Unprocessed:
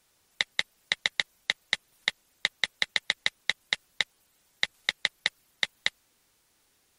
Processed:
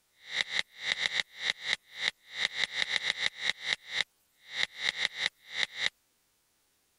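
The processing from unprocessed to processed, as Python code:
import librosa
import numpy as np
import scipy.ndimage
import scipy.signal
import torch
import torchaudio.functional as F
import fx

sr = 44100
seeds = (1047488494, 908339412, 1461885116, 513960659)

y = fx.spec_swells(x, sr, rise_s=0.33)
y = y * librosa.db_to_amplitude(-5.0)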